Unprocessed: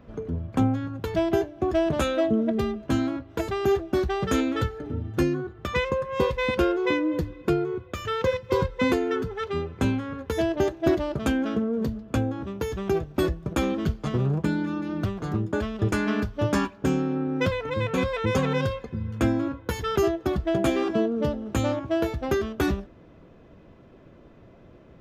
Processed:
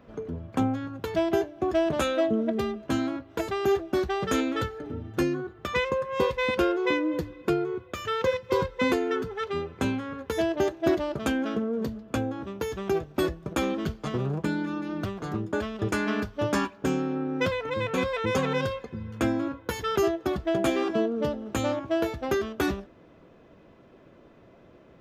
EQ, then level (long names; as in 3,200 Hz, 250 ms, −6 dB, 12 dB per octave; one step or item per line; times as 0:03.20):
low-shelf EQ 160 Hz −10 dB
0.0 dB